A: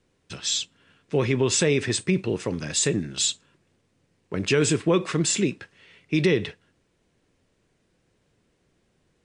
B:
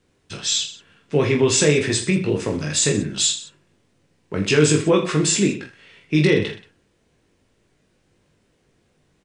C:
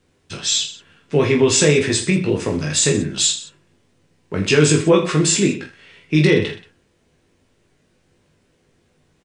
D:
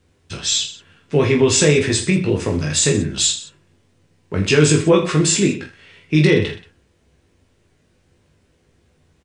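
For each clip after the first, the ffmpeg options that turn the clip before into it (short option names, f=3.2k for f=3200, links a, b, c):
-af "aecho=1:1:20|46|79.8|123.7|180.9:0.631|0.398|0.251|0.158|0.1,volume=2.5dB"
-filter_complex "[0:a]asplit=2[a][b];[b]adelay=12,volume=-11dB[c];[a][c]amix=inputs=2:normalize=0,volume=2dB"
-af "equalizer=f=72:t=o:w=0.74:g=11"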